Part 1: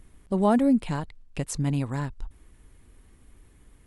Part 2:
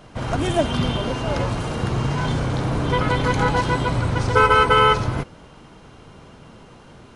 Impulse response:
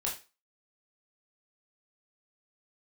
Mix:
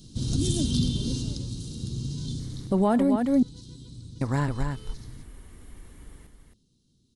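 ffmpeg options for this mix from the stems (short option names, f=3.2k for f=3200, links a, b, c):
-filter_complex "[0:a]bandreject=f=2.5k:w=19,acontrast=31,adelay=2400,volume=1dB,asplit=3[a][b][c];[a]atrim=end=3.16,asetpts=PTS-STARTPTS,afade=t=out:st=3.156:d=0.004:c=hsin[d];[b]atrim=start=3.16:end=4.21,asetpts=PTS-STARTPTS,volume=0[e];[c]atrim=start=4.21,asetpts=PTS-STARTPTS,afade=t=in:d=0.004:c=hsin[f];[d][e][f]concat=n=3:v=0:a=1,asplit=3[g][h][i];[h]volume=-22dB[j];[i]volume=-5dB[k];[1:a]firequalizer=gain_entry='entry(260,0);entry(660,-28);entry(2100,-26);entry(3800,6)':delay=0.05:min_phase=1,volume=-0.5dB,afade=t=out:st=1.14:d=0.24:silence=0.375837,afade=t=out:st=2.28:d=0.57:silence=0.266073[l];[2:a]atrim=start_sample=2205[m];[j][m]afir=irnorm=-1:irlink=0[n];[k]aecho=0:1:269:1[o];[g][l][n][o]amix=inputs=4:normalize=0,alimiter=limit=-14dB:level=0:latency=1:release=266"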